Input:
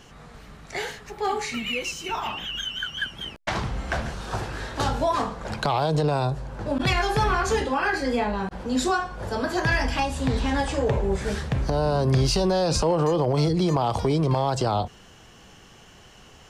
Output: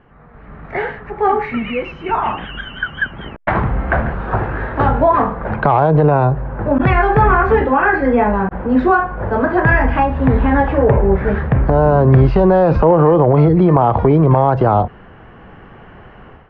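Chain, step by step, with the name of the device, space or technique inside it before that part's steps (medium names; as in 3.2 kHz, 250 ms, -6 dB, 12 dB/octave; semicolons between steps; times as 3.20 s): action camera in a waterproof case (low-pass 1.9 kHz 24 dB/octave; level rider gain up to 12.5 dB; AAC 128 kbps 44.1 kHz)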